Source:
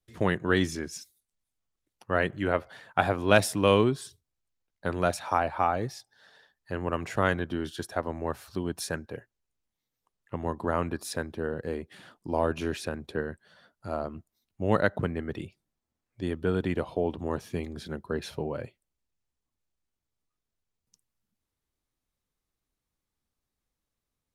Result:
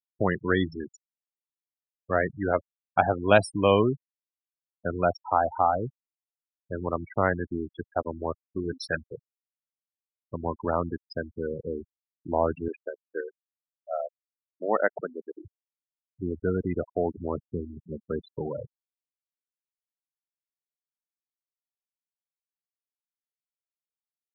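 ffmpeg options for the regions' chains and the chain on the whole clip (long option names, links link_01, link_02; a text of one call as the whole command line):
ffmpeg -i in.wav -filter_complex "[0:a]asettb=1/sr,asplit=3[link_01][link_02][link_03];[link_01]atrim=end=8.454[link_04];[link_02]atrim=start=8.45:end=9.03,asetpts=PTS-STARTPTS,afade=type=in:duration=0.004:curve=qsin,afade=type=out:start_time=0.576:duration=0.004:curve=qsin,equalizer=frequency=2300:width_type=o:width=2.2:gain=9,asplit=2[link_05][link_06];[link_06]adelay=14,volume=-12dB[link_07];[link_05][link_07]amix=inputs=2:normalize=0,atrim=end_sample=25578,bandreject=frequency=65.06:width_type=h:width=4,bandreject=frequency=130.12:width_type=h:width=4,bandreject=frequency=195.18:width_type=h:width=4,bandreject=frequency=260.24:width_type=h:width=4,bandreject=frequency=325.3:width_type=h:width=4,bandreject=frequency=390.36:width_type=h:width=4,bandreject=frequency=455.42:width_type=h:width=4,bandreject=frequency=520.48:width_type=h:width=4,bandreject=frequency=585.54:width_type=h:width=4,bandreject=frequency=650.6:width_type=h:width=4,bandreject=frequency=715.66:width_type=h:width=4,bandreject=frequency=780.72:width_type=h:width=4,bandreject=frequency=845.78:width_type=h:width=4,bandreject=frequency=910.84:width_type=h:width=4,bandreject=frequency=975.9:width_type=h:width=4[link_08];[link_03]atrim=start=9.026[link_09];[link_04][link_08]acrossfade=duration=0.004:curve1=hsin:curve2=qsin[link_10];[link_10][link_09]acrossfade=duration=0.004:curve1=qsin:curve2=hsin,asettb=1/sr,asplit=3[link_11][link_12][link_13];[link_11]atrim=end=12.684[link_14];[link_12]atrim=start=12.68:end=15.45,asetpts=PTS-STARTPTS,afade=type=in:duration=0.004:curve=qsin,afade=type=out:start_time=2.766:duration=0.004:curve=qsin,highpass=340,highshelf=frequency=7700:gain=9.5[link_15];[link_13]atrim=start=15.446[link_16];[link_14][link_15]acrossfade=duration=0.004:curve1=hsin:curve2=qsin[link_17];[link_17][link_16]acrossfade=duration=0.004:curve1=qsin:curve2=hsin,afftfilt=real='re*gte(hypot(re,im),0.0631)':imag='im*gte(hypot(re,im),0.0631)':win_size=1024:overlap=0.75,equalizer=frequency=730:width_type=o:width=0.67:gain=4.5" out.wav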